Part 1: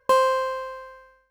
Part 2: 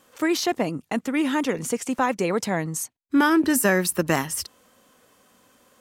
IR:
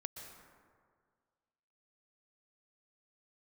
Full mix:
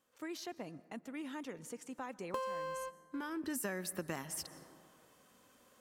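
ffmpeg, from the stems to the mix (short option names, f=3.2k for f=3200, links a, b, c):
-filter_complex "[0:a]adelay=2250,volume=-9dB,asplit=2[a][b];[b]volume=-20dB[c];[1:a]volume=-9dB,afade=t=in:st=3.35:d=0.27:silence=0.237137,asplit=3[d][e][f];[e]volume=-10.5dB[g];[f]apad=whole_len=156701[h];[a][h]sidechaingate=range=-33dB:threshold=-55dB:ratio=16:detection=peak[i];[2:a]atrim=start_sample=2205[j];[c][g]amix=inputs=2:normalize=0[k];[k][j]afir=irnorm=-1:irlink=0[l];[i][d][l]amix=inputs=3:normalize=0,acompressor=threshold=-38dB:ratio=4"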